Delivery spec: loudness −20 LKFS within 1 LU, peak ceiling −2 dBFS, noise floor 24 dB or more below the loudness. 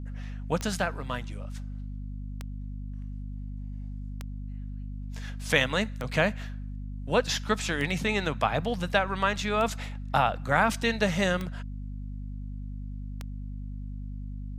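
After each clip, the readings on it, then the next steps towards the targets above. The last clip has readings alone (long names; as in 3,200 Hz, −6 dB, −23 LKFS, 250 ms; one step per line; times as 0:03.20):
number of clicks 8; mains hum 50 Hz; hum harmonics up to 250 Hz; level of the hum −34 dBFS; integrated loudness −30.5 LKFS; sample peak −7.0 dBFS; target loudness −20.0 LKFS
→ click removal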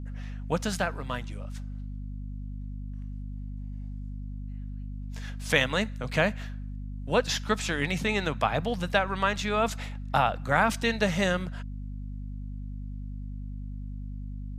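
number of clicks 0; mains hum 50 Hz; hum harmonics up to 250 Hz; level of the hum −34 dBFS
→ hum removal 50 Hz, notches 5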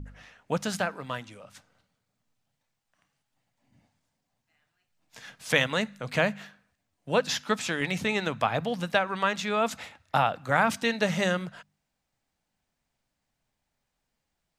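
mains hum none found; integrated loudness −27.5 LKFS; sample peak −6.5 dBFS; target loudness −20.0 LKFS
→ level +7.5 dB
brickwall limiter −2 dBFS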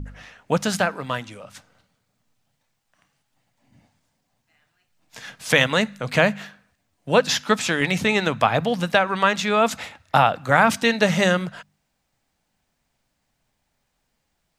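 integrated loudness −20.5 LKFS; sample peak −2.0 dBFS; background noise floor −74 dBFS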